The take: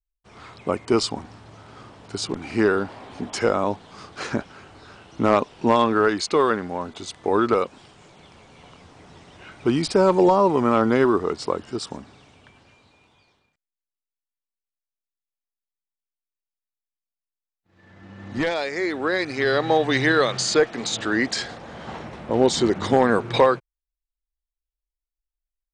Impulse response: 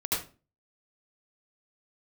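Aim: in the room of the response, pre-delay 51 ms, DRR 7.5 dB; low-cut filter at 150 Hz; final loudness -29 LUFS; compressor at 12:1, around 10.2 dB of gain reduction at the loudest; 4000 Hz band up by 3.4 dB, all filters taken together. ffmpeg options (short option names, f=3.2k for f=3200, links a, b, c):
-filter_complex "[0:a]highpass=150,equalizer=f=4k:t=o:g=4,acompressor=threshold=-22dB:ratio=12,asplit=2[a][b];[1:a]atrim=start_sample=2205,adelay=51[c];[b][c]afir=irnorm=-1:irlink=0,volume=-15dB[d];[a][d]amix=inputs=2:normalize=0,volume=-1.5dB"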